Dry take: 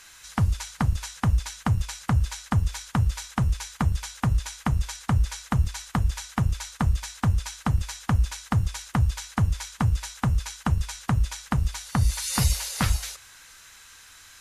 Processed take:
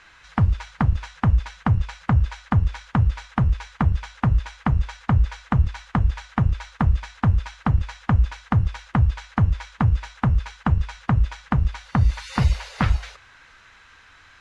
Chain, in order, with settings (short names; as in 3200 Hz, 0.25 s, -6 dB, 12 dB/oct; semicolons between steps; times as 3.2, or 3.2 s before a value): LPF 2400 Hz 12 dB/oct; gain +4 dB